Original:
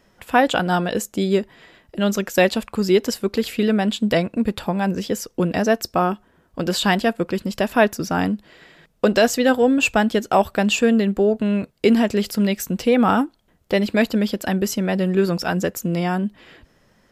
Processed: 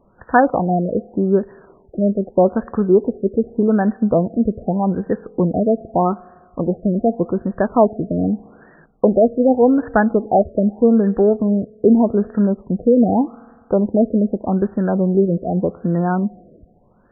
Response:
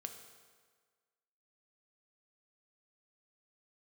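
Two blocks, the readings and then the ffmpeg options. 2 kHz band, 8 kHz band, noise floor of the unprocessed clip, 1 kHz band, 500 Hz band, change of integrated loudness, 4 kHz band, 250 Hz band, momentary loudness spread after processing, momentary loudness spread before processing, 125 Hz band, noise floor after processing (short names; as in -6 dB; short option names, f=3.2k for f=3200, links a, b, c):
-6.5 dB, under -40 dB, -59 dBFS, +1.5 dB, +3.5 dB, +2.5 dB, under -40 dB, +3.5 dB, 7 LU, 7 LU, +3.5 dB, -53 dBFS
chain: -filter_complex "[0:a]asplit=2[a][b];[1:a]atrim=start_sample=2205,highshelf=f=4.2k:g=-11.5[c];[b][c]afir=irnorm=-1:irlink=0,volume=-11dB[d];[a][d]amix=inputs=2:normalize=0,afftfilt=real='re*lt(b*sr/1024,670*pow(1900/670,0.5+0.5*sin(2*PI*0.83*pts/sr)))':imag='im*lt(b*sr/1024,670*pow(1900/670,0.5+0.5*sin(2*PI*0.83*pts/sr)))':win_size=1024:overlap=0.75,volume=2dB"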